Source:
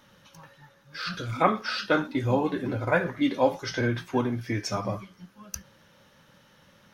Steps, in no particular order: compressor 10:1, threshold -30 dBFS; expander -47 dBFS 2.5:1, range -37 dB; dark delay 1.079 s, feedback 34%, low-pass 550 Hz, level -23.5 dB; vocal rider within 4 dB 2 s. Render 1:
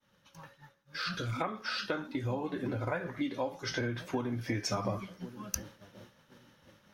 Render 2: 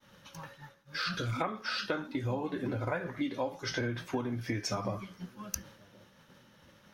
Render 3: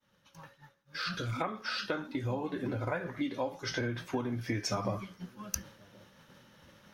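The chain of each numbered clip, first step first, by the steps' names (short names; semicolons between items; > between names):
dark delay > expander > compressor > vocal rider; vocal rider > expander > compressor > dark delay; compressor > vocal rider > expander > dark delay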